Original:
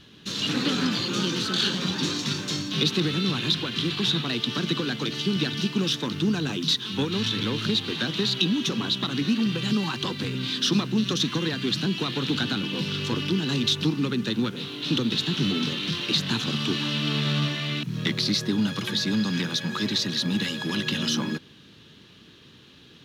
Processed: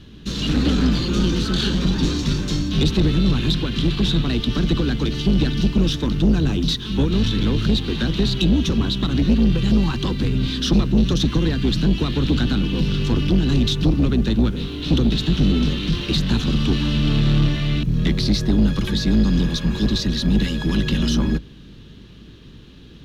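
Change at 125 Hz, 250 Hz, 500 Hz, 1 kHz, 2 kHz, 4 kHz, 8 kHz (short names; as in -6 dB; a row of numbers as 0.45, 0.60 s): +10.0, +7.0, +5.0, +1.0, -0.5, -1.0, -0.5 dB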